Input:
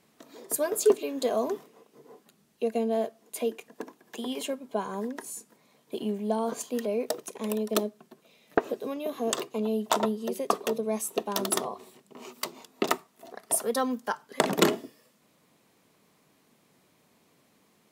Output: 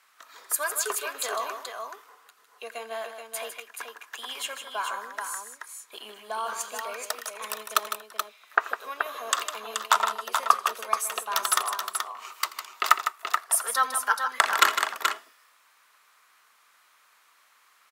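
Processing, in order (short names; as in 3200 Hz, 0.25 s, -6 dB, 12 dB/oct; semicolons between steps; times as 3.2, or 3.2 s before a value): resonant high-pass 1300 Hz, resonance Q 2.9; tapped delay 84/155/429 ms -19.5/-9/-6 dB; gain +3 dB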